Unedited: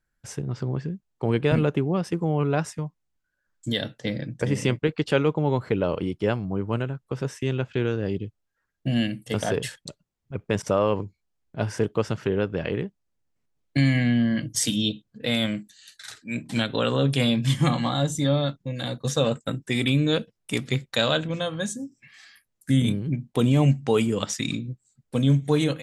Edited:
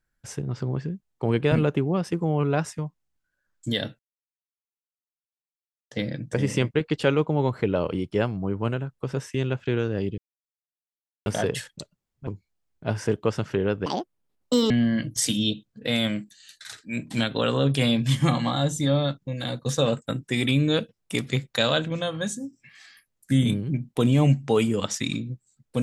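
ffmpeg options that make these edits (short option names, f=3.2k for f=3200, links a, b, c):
-filter_complex "[0:a]asplit=7[a][b][c][d][e][f][g];[a]atrim=end=3.99,asetpts=PTS-STARTPTS,afade=t=out:st=3.986:d=0.004:c=hsin,apad=pad_dur=1.92[h];[b]atrim=start=3.99:end=8.26,asetpts=PTS-STARTPTS,afade=t=in:d=0.004:c=hsin,afade=t=out:st=4.266:d=0.004:c=hsin[i];[c]atrim=start=8.26:end=9.34,asetpts=PTS-STARTPTS,volume=0[j];[d]atrim=start=9.34:end=10.352,asetpts=PTS-STARTPTS,afade=t=in:d=0.004:c=hsin[k];[e]atrim=start=10.988:end=12.584[l];[f]atrim=start=12.58:end=14.09,asetpts=PTS-STARTPTS,asetrate=78939,aresample=44100[m];[g]atrim=start=14.086[n];[h][i][j][k]concat=n=4:v=0:a=1[o];[o][l]acrossfade=d=0.004:c1=hsin:c2=hsin[p];[p][m]acrossfade=d=0.004:c1=hsin:c2=hsin[q];[q][n]acrossfade=d=0.004:c1=hsin:c2=hsin"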